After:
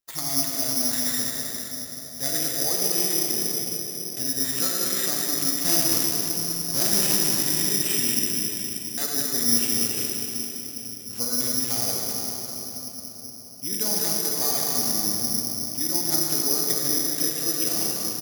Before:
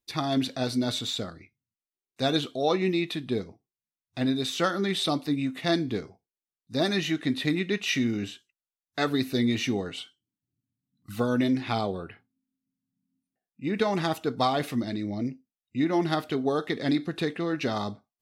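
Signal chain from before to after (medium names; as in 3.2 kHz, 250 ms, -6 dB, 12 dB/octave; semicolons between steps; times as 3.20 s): 5.58–7.18 s: square wave that keeps the level; in parallel at -2 dB: compression, threshold -32 dBFS, peak gain reduction 14.5 dB; on the sum: delay 200 ms -7 dB; reverberation RT60 4.6 s, pre-delay 28 ms, DRR -2.5 dB; careless resampling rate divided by 8×, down none, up zero stuff; trim -14 dB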